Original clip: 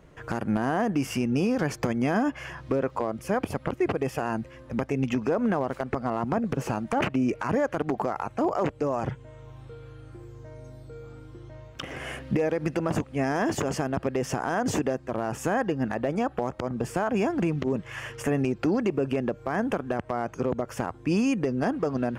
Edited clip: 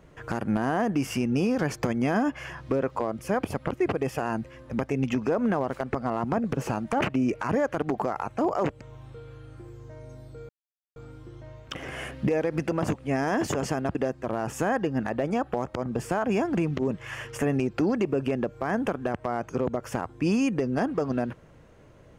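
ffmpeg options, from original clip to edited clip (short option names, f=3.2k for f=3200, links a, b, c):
-filter_complex "[0:a]asplit=4[a][b][c][d];[a]atrim=end=8.812[e];[b]atrim=start=9.358:end=11.04,asetpts=PTS-STARTPTS,afade=t=out:st=1.678:d=0.004:c=hsin,apad=pad_dur=0.47[f];[c]atrim=start=11.04:end=14.032,asetpts=PTS-STARTPTS,afade=t=in:d=0.004:c=hsin[g];[d]atrim=start=14.798[h];[f][g]concat=n=2:v=0:a=1[i];[e][i]acrossfade=d=0.004:c1=hsin:c2=hsin[j];[j][h]acrossfade=d=0.004:c1=hsin:c2=hsin"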